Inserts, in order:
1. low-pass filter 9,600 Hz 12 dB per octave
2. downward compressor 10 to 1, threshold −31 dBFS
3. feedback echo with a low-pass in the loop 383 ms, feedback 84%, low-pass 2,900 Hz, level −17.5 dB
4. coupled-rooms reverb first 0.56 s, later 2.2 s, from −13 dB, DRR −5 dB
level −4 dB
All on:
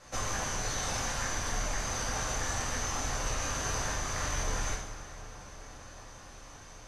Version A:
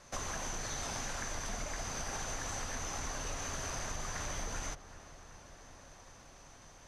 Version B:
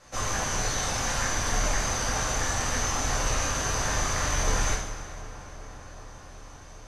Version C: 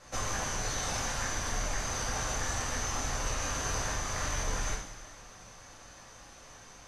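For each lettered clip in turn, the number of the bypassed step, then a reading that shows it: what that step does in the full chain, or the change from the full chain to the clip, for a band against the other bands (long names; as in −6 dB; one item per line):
4, change in integrated loudness −6.0 LU
2, average gain reduction 4.0 dB
3, change in momentary loudness spread +2 LU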